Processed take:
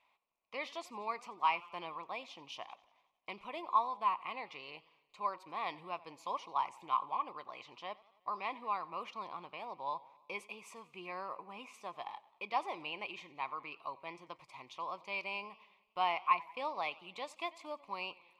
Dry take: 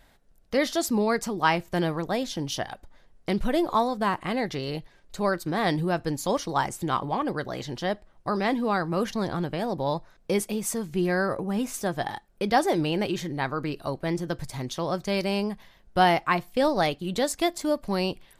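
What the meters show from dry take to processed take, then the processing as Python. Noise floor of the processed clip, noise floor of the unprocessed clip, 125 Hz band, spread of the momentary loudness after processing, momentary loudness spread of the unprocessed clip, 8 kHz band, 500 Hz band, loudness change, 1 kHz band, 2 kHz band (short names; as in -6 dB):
-75 dBFS, -59 dBFS, -31.5 dB, 15 LU, 9 LU, under -25 dB, -19.5 dB, -12.5 dB, -8.0 dB, -12.0 dB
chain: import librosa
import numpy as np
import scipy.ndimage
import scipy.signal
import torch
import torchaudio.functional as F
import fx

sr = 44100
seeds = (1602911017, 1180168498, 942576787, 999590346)

y = fx.double_bandpass(x, sr, hz=1600.0, octaves=1.2)
y = fx.echo_warbled(y, sr, ms=91, feedback_pct=60, rate_hz=2.8, cents=112, wet_db=-21.5)
y = y * librosa.db_to_amplitude(-1.0)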